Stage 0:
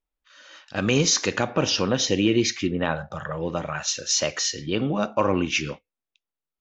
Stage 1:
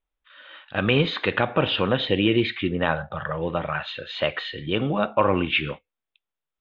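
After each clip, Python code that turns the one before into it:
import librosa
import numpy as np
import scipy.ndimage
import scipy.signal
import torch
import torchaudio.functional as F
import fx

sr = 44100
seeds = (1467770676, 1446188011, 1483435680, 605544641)

y = scipy.signal.sosfilt(scipy.signal.ellip(4, 1.0, 40, 3600.0, 'lowpass', fs=sr, output='sos'), x)
y = fx.peak_eq(y, sr, hz=260.0, db=-4.0, octaves=1.2)
y = y * 10.0 ** (3.5 / 20.0)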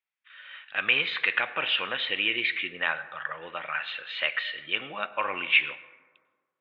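y = fx.bandpass_q(x, sr, hz=2200.0, q=2.2)
y = fx.rev_plate(y, sr, seeds[0], rt60_s=1.6, hf_ratio=0.35, predelay_ms=85, drr_db=17.0)
y = y * 10.0 ** (4.5 / 20.0)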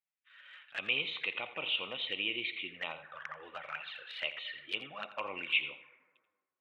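y = fx.env_flanger(x, sr, rest_ms=11.4, full_db=-26.5)
y = y + 10.0 ** (-14.5 / 20.0) * np.pad(y, (int(85 * sr / 1000.0), 0))[:len(y)]
y = y * 10.0 ** (-6.0 / 20.0)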